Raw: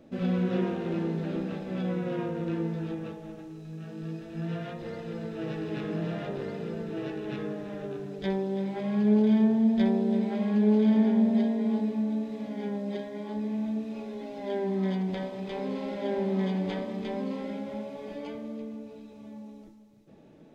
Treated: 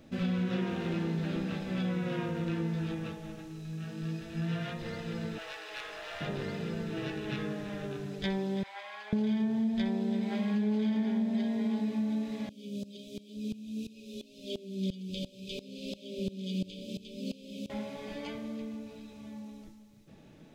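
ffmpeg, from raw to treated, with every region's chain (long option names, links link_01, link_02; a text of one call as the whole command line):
ffmpeg -i in.wav -filter_complex "[0:a]asettb=1/sr,asplit=3[link_01][link_02][link_03];[link_01]atrim=end=5.384[link_04];[link_02]atrim=start=5.38:end=6.21,asetpts=PTS-STARTPTS,afade=type=in:duration=0.004:curve=qsin,afade=type=out:start_time=0.826:duration=0.004:curve=qsin,highpass=frequency=590:width=0.5412,highpass=frequency=590:width=1.3066,aeval=exprs='clip(val(0),-1,0.0106)':channel_layout=same[link_05];[link_03]atrim=start=6.206[link_06];[link_04][link_05]acrossfade=duration=0.004:curve1=hsin:curve2=qsin[link_07];[link_07][link_06]acrossfade=duration=0.004:curve1=qsin:curve2=hsin,asettb=1/sr,asplit=3[link_08][link_09][link_10];[link_08]atrim=end=8.634[link_11];[link_09]atrim=start=8.63:end=9.13,asetpts=PTS-STARTPTS,afade=type=in:duration=0.004:curve=qsin,afade=type=out:start_time=0.496:duration=0.004:curve=qsin,highpass=frequency=770:width=0.5412,highpass=frequency=770:width=1.3066,highshelf=frequency=3800:gain=-9.5[link_12];[link_10]atrim=start=9.126[link_13];[link_11][link_12]acrossfade=duration=0.004:curve1=hsin:curve2=qsin[link_14];[link_14][link_13]acrossfade=duration=0.004:curve1=qsin:curve2=hsin,asettb=1/sr,asplit=3[link_15][link_16][link_17];[link_15]atrim=end=12.494[link_18];[link_16]atrim=start=12.49:end=17.7,asetpts=PTS-STARTPTS,afade=type=in:duration=0.004:curve=qsin,afade=type=out:start_time=5.206:duration=0.004:curve=qsin,asuperstop=centerf=1200:order=20:qfactor=0.64,highshelf=frequency=3100:gain=9,aeval=exprs='val(0)*pow(10,-19*if(lt(mod(-2.9*n/s,1),2*abs(-2.9)/1000),1-mod(-2.9*n/s,1)/(2*abs(-2.9)/1000),(mod(-2.9*n/s,1)-2*abs(-2.9)/1000)/(1-2*abs(-2.9)/1000))/20)':channel_layout=same[link_19];[link_17]atrim=start=17.696[link_20];[link_18][link_19]acrossfade=duration=0.004:curve1=hsin:curve2=qsin[link_21];[link_21][link_20]acrossfade=duration=0.004:curve1=qsin:curve2=hsin,equalizer=frequency=450:width_type=o:width=2.9:gain=-11,acompressor=threshold=-35dB:ratio=4,volume=7dB" out.wav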